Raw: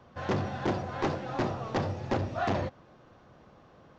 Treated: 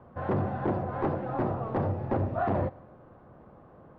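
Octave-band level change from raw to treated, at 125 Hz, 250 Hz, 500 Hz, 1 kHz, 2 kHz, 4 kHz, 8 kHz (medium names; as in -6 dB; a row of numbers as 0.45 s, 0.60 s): +3.0 dB, +2.0 dB, +2.0 dB, +1.5 dB, -4.0 dB, under -15 dB, no reading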